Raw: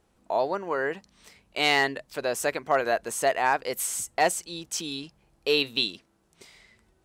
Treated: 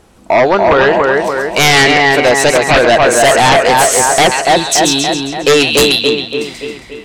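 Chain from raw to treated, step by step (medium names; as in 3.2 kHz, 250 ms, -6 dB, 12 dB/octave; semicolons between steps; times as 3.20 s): low-pass that closes with the level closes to 2.5 kHz, closed at -18.5 dBFS; two-band feedback delay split 2.4 kHz, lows 286 ms, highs 135 ms, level -4 dB; sine folder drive 12 dB, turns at -9 dBFS; trim +5 dB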